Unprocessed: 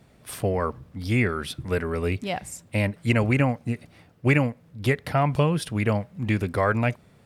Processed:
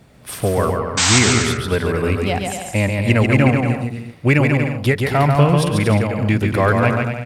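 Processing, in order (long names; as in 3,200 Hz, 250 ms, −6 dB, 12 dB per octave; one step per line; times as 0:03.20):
in parallel at −8.5 dB: soft clipping −22.5 dBFS, distortion −9 dB
on the sum: sound drawn into the spectrogram noise, 0:00.97–0:01.19, 640–8,500 Hz −20 dBFS
bouncing-ball delay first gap 140 ms, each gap 0.7×, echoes 5
level +4 dB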